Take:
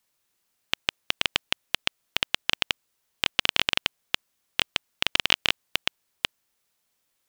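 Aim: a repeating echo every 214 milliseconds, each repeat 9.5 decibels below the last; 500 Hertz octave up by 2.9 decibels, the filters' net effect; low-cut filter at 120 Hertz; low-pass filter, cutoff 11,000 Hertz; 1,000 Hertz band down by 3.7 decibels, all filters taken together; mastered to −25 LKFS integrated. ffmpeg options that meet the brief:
ffmpeg -i in.wav -af "highpass=120,lowpass=11000,equalizer=frequency=500:width_type=o:gain=5.5,equalizer=frequency=1000:width_type=o:gain=-6.5,aecho=1:1:214|428|642|856:0.335|0.111|0.0365|0.012,volume=2dB" out.wav

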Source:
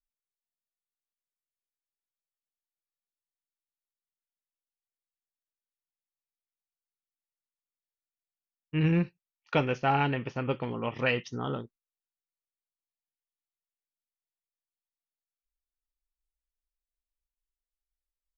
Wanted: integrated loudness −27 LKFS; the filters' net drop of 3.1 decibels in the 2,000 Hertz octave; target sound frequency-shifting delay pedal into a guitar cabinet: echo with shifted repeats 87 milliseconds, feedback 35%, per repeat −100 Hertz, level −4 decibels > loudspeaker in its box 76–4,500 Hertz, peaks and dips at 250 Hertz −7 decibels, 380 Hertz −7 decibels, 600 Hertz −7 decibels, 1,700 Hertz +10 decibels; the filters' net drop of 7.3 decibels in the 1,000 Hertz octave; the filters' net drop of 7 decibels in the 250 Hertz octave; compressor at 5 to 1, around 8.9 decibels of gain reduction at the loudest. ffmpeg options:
ffmpeg -i in.wav -filter_complex "[0:a]equalizer=frequency=250:width_type=o:gain=-8,equalizer=frequency=1000:width_type=o:gain=-7,equalizer=frequency=2000:width_type=o:gain=-7.5,acompressor=threshold=-35dB:ratio=5,asplit=5[link_01][link_02][link_03][link_04][link_05];[link_02]adelay=87,afreqshift=-100,volume=-4dB[link_06];[link_03]adelay=174,afreqshift=-200,volume=-13.1dB[link_07];[link_04]adelay=261,afreqshift=-300,volume=-22.2dB[link_08];[link_05]adelay=348,afreqshift=-400,volume=-31.4dB[link_09];[link_01][link_06][link_07][link_08][link_09]amix=inputs=5:normalize=0,highpass=76,equalizer=frequency=250:width_type=q:width=4:gain=-7,equalizer=frequency=380:width_type=q:width=4:gain=-7,equalizer=frequency=600:width_type=q:width=4:gain=-7,equalizer=frequency=1700:width_type=q:width=4:gain=10,lowpass=frequency=4500:width=0.5412,lowpass=frequency=4500:width=1.3066,volume=13.5dB" out.wav

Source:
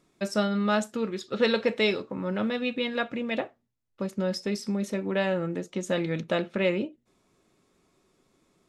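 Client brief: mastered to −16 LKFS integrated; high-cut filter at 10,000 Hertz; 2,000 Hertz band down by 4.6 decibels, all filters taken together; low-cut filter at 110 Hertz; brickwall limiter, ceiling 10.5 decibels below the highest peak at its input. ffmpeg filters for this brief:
ffmpeg -i in.wav -af "highpass=110,lowpass=10000,equalizer=frequency=2000:width_type=o:gain=-6,volume=16.5dB,alimiter=limit=-6dB:level=0:latency=1" out.wav

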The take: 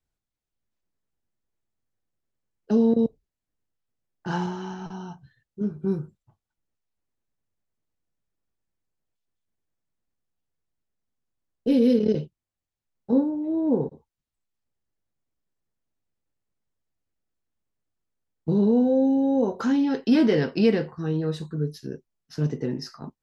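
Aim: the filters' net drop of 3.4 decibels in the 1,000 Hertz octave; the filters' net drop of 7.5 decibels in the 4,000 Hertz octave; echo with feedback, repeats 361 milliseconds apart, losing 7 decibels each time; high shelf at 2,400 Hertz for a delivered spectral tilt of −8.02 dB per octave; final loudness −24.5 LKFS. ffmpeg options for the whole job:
ffmpeg -i in.wav -af "equalizer=frequency=1000:width_type=o:gain=-3.5,highshelf=frequency=2400:gain=-4,equalizer=frequency=4000:width_type=o:gain=-6.5,aecho=1:1:361|722|1083|1444|1805:0.447|0.201|0.0905|0.0407|0.0183" out.wav

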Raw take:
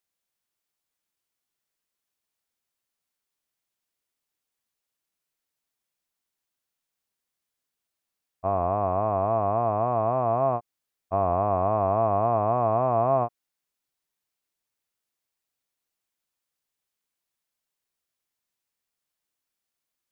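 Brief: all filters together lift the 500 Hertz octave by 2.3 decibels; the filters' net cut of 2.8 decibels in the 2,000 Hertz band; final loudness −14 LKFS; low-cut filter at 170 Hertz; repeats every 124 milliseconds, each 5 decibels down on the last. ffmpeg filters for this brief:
ffmpeg -i in.wav -af "highpass=170,equalizer=frequency=500:width_type=o:gain=4,equalizer=frequency=2000:width_type=o:gain=-4.5,aecho=1:1:124|248|372|496|620|744|868:0.562|0.315|0.176|0.0988|0.0553|0.031|0.0173,volume=8dB" out.wav

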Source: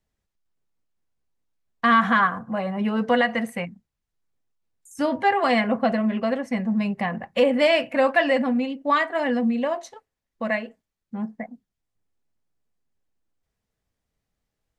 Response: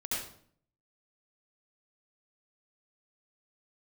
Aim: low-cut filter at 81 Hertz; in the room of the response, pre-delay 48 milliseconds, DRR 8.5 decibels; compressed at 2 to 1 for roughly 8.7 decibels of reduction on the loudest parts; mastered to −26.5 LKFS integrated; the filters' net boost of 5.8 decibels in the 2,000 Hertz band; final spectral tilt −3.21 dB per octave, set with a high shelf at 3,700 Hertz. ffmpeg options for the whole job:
-filter_complex "[0:a]highpass=81,equalizer=frequency=2000:width_type=o:gain=8,highshelf=frequency=3700:gain=-4.5,acompressor=threshold=-27dB:ratio=2,asplit=2[link_01][link_02];[1:a]atrim=start_sample=2205,adelay=48[link_03];[link_02][link_03]afir=irnorm=-1:irlink=0,volume=-12.5dB[link_04];[link_01][link_04]amix=inputs=2:normalize=0"

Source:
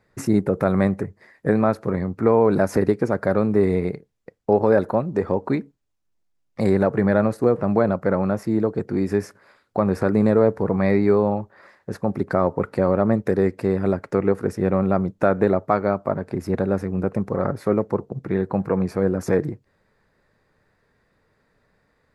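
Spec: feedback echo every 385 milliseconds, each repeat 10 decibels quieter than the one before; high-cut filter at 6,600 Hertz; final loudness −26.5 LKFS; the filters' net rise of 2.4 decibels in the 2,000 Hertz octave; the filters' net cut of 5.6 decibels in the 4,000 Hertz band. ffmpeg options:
ffmpeg -i in.wav -af "lowpass=6600,equalizer=frequency=2000:width_type=o:gain=4.5,equalizer=frequency=4000:width_type=o:gain=-7,aecho=1:1:385|770|1155|1540:0.316|0.101|0.0324|0.0104,volume=-5.5dB" out.wav

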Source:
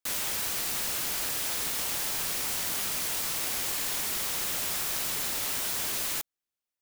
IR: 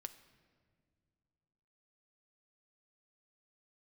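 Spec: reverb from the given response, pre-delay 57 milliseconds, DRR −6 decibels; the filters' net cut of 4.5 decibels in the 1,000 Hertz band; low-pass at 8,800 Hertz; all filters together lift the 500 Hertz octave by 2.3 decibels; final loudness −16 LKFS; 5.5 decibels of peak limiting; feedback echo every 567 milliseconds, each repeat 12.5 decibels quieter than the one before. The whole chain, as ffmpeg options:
-filter_complex "[0:a]lowpass=8800,equalizer=frequency=500:width_type=o:gain=5,equalizer=frequency=1000:width_type=o:gain=-7.5,alimiter=level_in=4dB:limit=-24dB:level=0:latency=1,volume=-4dB,aecho=1:1:567|1134|1701:0.237|0.0569|0.0137,asplit=2[link_01][link_02];[1:a]atrim=start_sample=2205,adelay=57[link_03];[link_02][link_03]afir=irnorm=-1:irlink=0,volume=10.5dB[link_04];[link_01][link_04]amix=inputs=2:normalize=0,volume=12.5dB"

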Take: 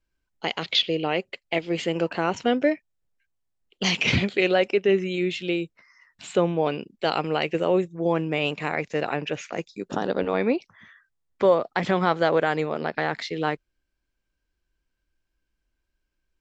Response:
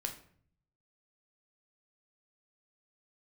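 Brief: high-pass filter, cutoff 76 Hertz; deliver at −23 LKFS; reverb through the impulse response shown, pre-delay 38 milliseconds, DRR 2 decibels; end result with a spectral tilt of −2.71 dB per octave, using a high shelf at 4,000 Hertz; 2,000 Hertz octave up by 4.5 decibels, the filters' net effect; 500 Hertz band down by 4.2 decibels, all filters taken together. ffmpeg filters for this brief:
-filter_complex "[0:a]highpass=76,equalizer=frequency=500:width_type=o:gain=-5.5,equalizer=frequency=2000:width_type=o:gain=8,highshelf=frequency=4000:gain=-8.5,asplit=2[link_01][link_02];[1:a]atrim=start_sample=2205,adelay=38[link_03];[link_02][link_03]afir=irnorm=-1:irlink=0,volume=-2dB[link_04];[link_01][link_04]amix=inputs=2:normalize=0,volume=0.5dB"

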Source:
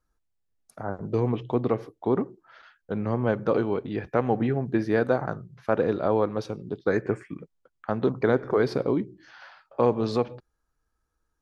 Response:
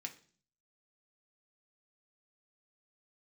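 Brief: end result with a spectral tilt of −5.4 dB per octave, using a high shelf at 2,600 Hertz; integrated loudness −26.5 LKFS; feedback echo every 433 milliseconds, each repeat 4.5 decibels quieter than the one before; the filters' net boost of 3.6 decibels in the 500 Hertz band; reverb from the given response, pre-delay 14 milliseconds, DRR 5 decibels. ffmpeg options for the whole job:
-filter_complex "[0:a]equalizer=frequency=500:width_type=o:gain=4.5,highshelf=frequency=2600:gain=-9,aecho=1:1:433|866|1299|1732|2165|2598|3031|3464|3897:0.596|0.357|0.214|0.129|0.0772|0.0463|0.0278|0.0167|0.01,asplit=2[link_01][link_02];[1:a]atrim=start_sample=2205,adelay=14[link_03];[link_02][link_03]afir=irnorm=-1:irlink=0,volume=-2.5dB[link_04];[link_01][link_04]amix=inputs=2:normalize=0,volume=-4dB"

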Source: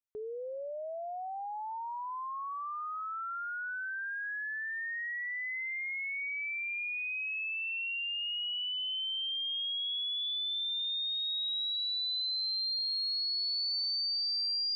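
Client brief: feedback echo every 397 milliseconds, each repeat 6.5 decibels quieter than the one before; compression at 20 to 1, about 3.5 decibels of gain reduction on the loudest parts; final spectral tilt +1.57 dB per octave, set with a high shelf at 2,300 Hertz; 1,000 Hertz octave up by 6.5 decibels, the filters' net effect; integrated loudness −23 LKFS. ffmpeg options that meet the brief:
ffmpeg -i in.wav -af "equalizer=frequency=1000:width_type=o:gain=6.5,highshelf=frequency=2300:gain=7.5,acompressor=threshold=-29dB:ratio=20,aecho=1:1:397|794|1191|1588|1985|2382:0.473|0.222|0.105|0.0491|0.0231|0.0109,volume=5.5dB" out.wav

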